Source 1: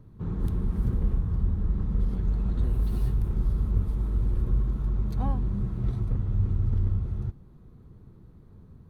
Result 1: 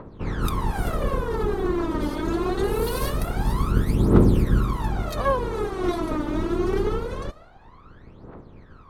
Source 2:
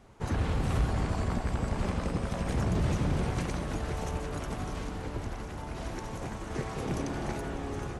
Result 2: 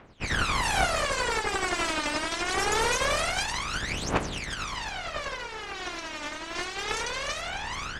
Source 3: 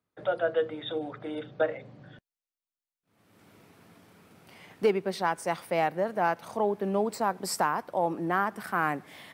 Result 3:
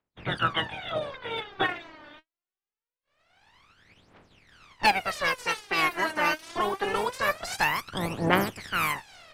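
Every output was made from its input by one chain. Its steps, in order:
spectral limiter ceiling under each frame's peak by 28 dB; low-pass opened by the level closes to 2600 Hz, open at -23 dBFS; phaser 0.24 Hz, delay 3.4 ms, feedback 79%; gain -2 dB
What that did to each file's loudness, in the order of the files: +4.5, +4.5, +2.0 LU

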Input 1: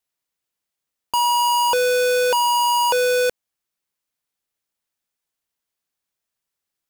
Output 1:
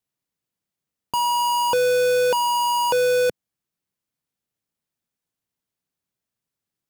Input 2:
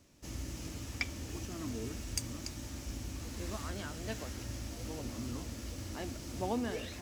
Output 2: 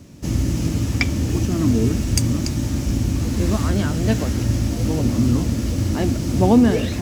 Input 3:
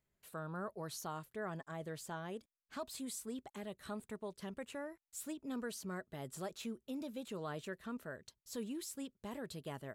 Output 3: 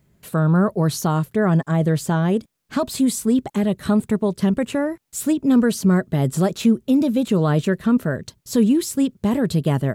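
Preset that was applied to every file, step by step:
bell 150 Hz +12.5 dB 2.6 oct; match loudness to -20 LUFS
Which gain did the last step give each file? -4.0, +13.5, +18.0 dB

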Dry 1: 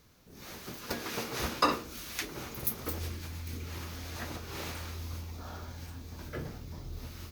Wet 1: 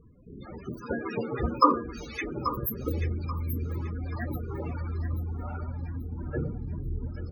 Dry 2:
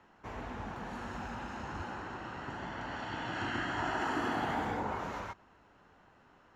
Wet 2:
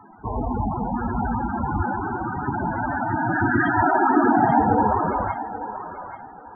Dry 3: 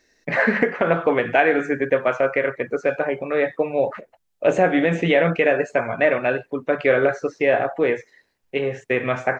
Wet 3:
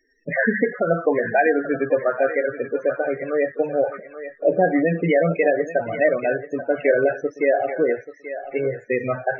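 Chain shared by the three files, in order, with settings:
loudest bins only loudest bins 16; thinning echo 0.834 s, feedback 34%, high-pass 570 Hz, level -9.5 dB; ending taper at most 550 dB/s; normalise peaks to -6 dBFS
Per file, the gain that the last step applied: +9.0, +19.0, 0.0 dB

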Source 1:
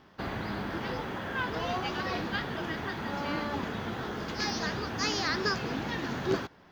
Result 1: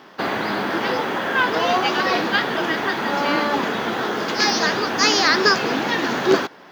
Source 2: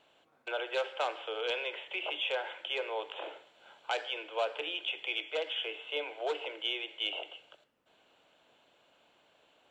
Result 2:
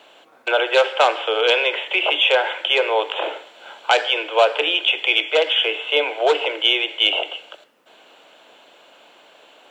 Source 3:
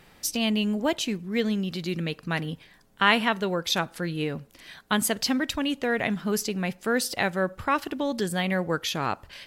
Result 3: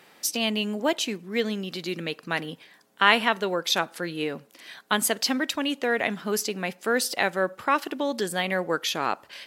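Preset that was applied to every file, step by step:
HPF 280 Hz 12 dB/oct; normalise peaks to -2 dBFS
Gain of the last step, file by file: +14.0, +17.5, +2.0 dB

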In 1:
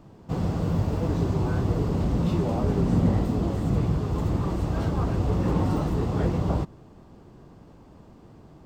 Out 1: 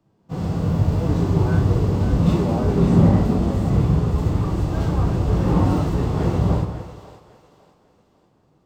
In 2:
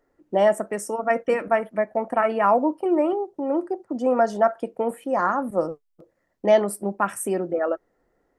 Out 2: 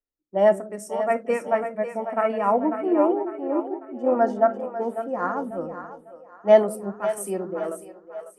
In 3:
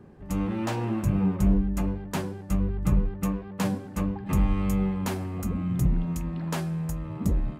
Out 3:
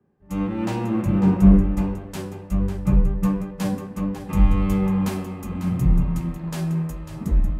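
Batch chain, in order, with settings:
harmonic-percussive split percussive -9 dB; split-band echo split 430 Hz, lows 0.176 s, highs 0.548 s, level -7 dB; three-band expander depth 70%; normalise peaks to -3 dBFS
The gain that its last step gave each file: +7.0, -1.0, +5.5 dB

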